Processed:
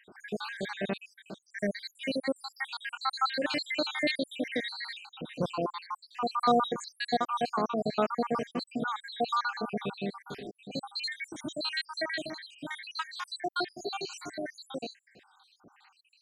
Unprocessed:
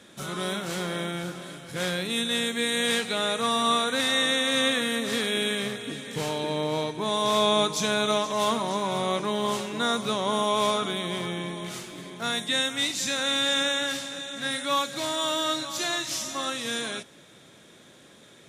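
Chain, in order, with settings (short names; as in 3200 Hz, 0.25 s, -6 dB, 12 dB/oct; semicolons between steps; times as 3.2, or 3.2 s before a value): random spectral dropouts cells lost 78%; varispeed +14%; tape spacing loss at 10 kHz 20 dB; gain +3 dB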